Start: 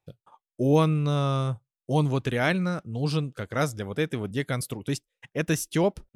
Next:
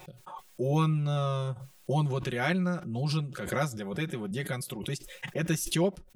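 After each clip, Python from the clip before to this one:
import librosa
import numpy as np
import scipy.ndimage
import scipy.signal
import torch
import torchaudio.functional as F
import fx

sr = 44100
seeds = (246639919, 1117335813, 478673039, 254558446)

y = x + 0.96 * np.pad(x, (int(5.5 * sr / 1000.0), 0))[:len(x)]
y = fx.pre_swell(y, sr, db_per_s=49.0)
y = y * librosa.db_to_amplitude(-7.5)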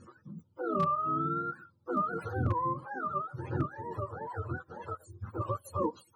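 y = fx.octave_mirror(x, sr, pivot_hz=430.0)
y = 10.0 ** (-18.0 / 20.0) * (np.abs((y / 10.0 ** (-18.0 / 20.0) + 3.0) % 4.0 - 2.0) - 1.0)
y = y * librosa.db_to_amplitude(-2.0)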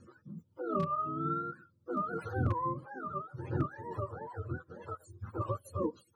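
y = fx.rotary_switch(x, sr, hz=5.0, then_hz=0.7, switch_at_s=0.68)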